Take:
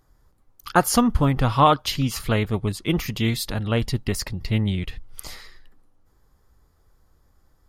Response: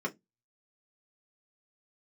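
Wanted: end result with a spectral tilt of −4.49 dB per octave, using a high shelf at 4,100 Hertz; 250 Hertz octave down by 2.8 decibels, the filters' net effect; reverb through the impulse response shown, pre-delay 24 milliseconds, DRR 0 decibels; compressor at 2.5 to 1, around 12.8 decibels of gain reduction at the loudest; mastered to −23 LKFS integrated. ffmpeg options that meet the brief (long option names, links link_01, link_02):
-filter_complex "[0:a]equalizer=frequency=250:width_type=o:gain=-3.5,highshelf=frequency=4100:gain=6,acompressor=threshold=-31dB:ratio=2.5,asplit=2[link_01][link_02];[1:a]atrim=start_sample=2205,adelay=24[link_03];[link_02][link_03]afir=irnorm=-1:irlink=0,volume=-5.5dB[link_04];[link_01][link_04]amix=inputs=2:normalize=0,volume=6.5dB"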